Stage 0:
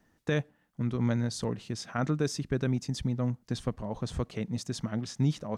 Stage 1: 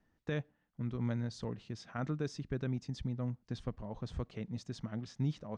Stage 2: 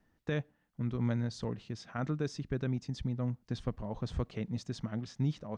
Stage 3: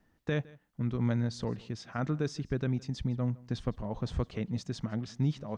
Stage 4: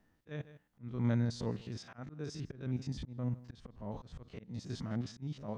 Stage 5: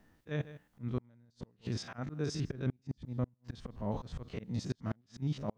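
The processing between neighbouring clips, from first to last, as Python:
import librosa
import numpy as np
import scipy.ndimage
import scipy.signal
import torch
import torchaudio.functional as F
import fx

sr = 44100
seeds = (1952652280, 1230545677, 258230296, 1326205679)

y1 = scipy.signal.sosfilt(scipy.signal.butter(2, 5000.0, 'lowpass', fs=sr, output='sos'), x)
y1 = fx.low_shelf(y1, sr, hz=72.0, db=7.5)
y1 = F.gain(torch.from_numpy(y1), -8.5).numpy()
y2 = fx.rider(y1, sr, range_db=10, speed_s=2.0)
y2 = F.gain(torch.from_numpy(y2), 2.5).numpy()
y3 = y2 + 10.0 ** (-23.0 / 20.0) * np.pad(y2, (int(161 * sr / 1000.0), 0))[:len(y2)]
y3 = F.gain(torch.from_numpy(y3), 2.5).numpy()
y4 = fx.spec_steps(y3, sr, hold_ms=50)
y4 = fx.auto_swell(y4, sr, attack_ms=304.0)
y4 = F.gain(torch.from_numpy(y4), -1.0).numpy()
y5 = fx.gate_flip(y4, sr, shuts_db=-29.0, range_db=-38)
y5 = F.gain(torch.from_numpy(y5), 6.5).numpy()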